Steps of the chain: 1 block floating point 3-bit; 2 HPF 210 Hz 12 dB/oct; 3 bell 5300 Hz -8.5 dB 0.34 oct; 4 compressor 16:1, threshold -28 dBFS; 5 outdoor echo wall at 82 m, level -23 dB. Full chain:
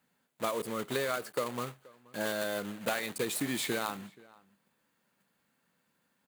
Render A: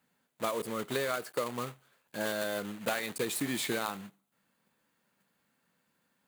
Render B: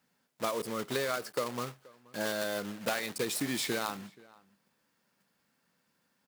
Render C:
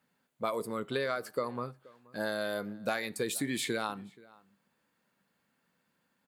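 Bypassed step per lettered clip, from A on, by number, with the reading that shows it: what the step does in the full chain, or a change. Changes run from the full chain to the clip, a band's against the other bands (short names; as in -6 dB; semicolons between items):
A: 5, echo-to-direct -24.5 dB to none; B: 3, 4 kHz band +1.5 dB; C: 1, distortion -9 dB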